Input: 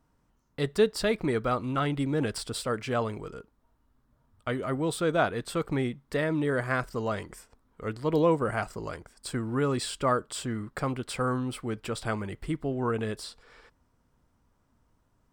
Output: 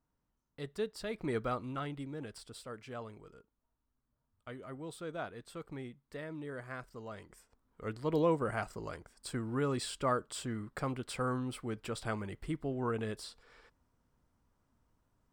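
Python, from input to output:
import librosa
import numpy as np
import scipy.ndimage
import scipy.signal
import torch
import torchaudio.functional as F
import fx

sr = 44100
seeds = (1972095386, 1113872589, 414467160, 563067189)

y = fx.gain(x, sr, db=fx.line((1.07, -13.5), (1.36, -6.0), (2.2, -15.5), (7.09, -15.5), (7.87, -6.0)))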